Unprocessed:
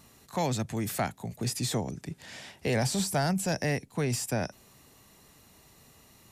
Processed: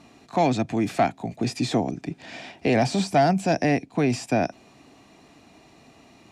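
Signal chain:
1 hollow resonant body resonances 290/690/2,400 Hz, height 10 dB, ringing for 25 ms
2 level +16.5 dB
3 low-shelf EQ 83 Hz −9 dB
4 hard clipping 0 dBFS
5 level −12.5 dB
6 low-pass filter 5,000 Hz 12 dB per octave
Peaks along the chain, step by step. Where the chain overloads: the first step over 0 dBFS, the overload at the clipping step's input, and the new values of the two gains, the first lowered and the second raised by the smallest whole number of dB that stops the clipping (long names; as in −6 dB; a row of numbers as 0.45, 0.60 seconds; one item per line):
−12.5, +4.0, +4.0, 0.0, −12.5, −12.0 dBFS
step 2, 4.0 dB
step 2 +12.5 dB, step 5 −8.5 dB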